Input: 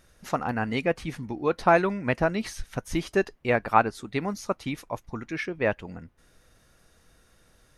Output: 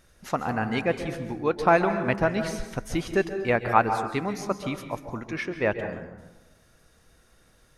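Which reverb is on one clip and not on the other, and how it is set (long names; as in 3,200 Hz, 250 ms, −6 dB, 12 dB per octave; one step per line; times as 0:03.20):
dense smooth reverb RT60 1.1 s, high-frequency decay 0.45×, pre-delay 120 ms, DRR 8 dB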